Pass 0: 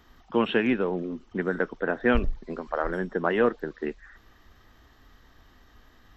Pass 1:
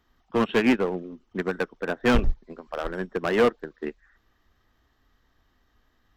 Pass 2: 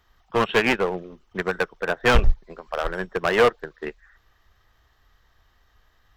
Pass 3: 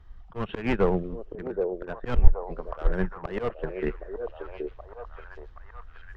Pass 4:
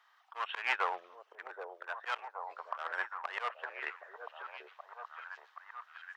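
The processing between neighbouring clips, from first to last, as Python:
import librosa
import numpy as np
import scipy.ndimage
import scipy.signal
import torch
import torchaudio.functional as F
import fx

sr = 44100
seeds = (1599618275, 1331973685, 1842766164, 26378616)

y1 = np.clip(10.0 ** (21.0 / 20.0) * x, -1.0, 1.0) / 10.0 ** (21.0 / 20.0)
y1 = fx.upward_expand(y1, sr, threshold_db=-35.0, expansion=2.5)
y1 = F.gain(torch.from_numpy(y1), 8.0).numpy()
y2 = fx.peak_eq(y1, sr, hz=260.0, db=-13.0, octaves=0.97)
y2 = F.gain(torch.from_numpy(y2), 6.0).numpy()
y3 = fx.auto_swell(y2, sr, attack_ms=338.0)
y3 = fx.riaa(y3, sr, side='playback')
y3 = fx.echo_stepped(y3, sr, ms=774, hz=460.0, octaves=0.7, feedback_pct=70, wet_db=-3.0)
y3 = F.gain(torch.from_numpy(y3), -1.0).numpy()
y4 = scipy.signal.sosfilt(scipy.signal.butter(4, 890.0, 'highpass', fs=sr, output='sos'), y3)
y4 = F.gain(torch.from_numpy(y4), 2.5).numpy()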